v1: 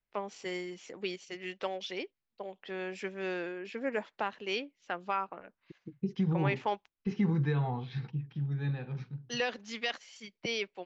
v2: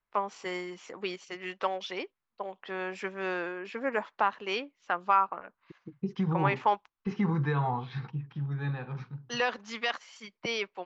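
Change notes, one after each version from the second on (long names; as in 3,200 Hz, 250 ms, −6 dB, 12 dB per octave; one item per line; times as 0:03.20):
master: add parametric band 1,100 Hz +11.5 dB 1.1 octaves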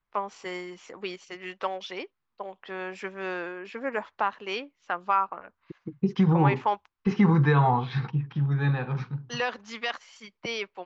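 first voice: add parametric band 78 Hz +13 dB 0.2 octaves
second voice +8.0 dB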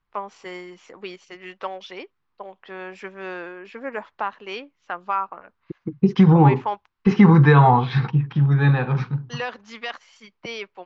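second voice +8.0 dB
master: add high-shelf EQ 7,800 Hz −7.5 dB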